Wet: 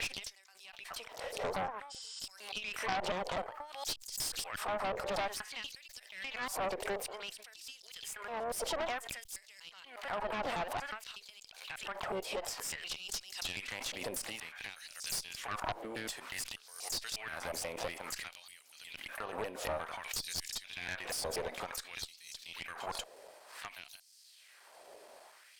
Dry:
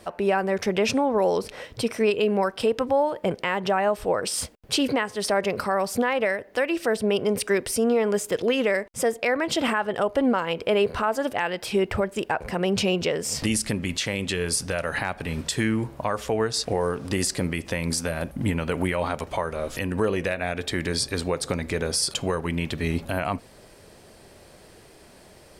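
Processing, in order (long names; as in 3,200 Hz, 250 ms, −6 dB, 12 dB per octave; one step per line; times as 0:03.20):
slices reordered back to front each 120 ms, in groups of 8
dynamic equaliser 740 Hz, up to +6 dB, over −42 dBFS, Q 3.5
downward compressor 2 to 1, threshold −31 dBFS, peak gain reduction 9 dB
auto-filter high-pass sine 0.55 Hz 520–5,300 Hz
pitch-shifted copies added +5 semitones −13 dB, +7 semitones −14 dB
harmonic generator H 3 −6 dB, 4 −23 dB, 5 −11 dB, 8 −27 dB, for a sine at −11 dBFS
healed spectral selection 0:01.93–0:02.16, 840–9,400 Hz after
background raised ahead of every attack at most 80 dB per second
level −6.5 dB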